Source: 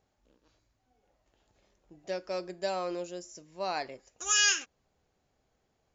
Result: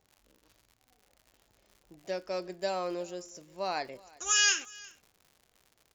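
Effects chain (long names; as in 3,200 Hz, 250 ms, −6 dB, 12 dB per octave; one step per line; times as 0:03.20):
surface crackle 110 per second −47 dBFS
on a send: single-tap delay 361 ms −23.5 dB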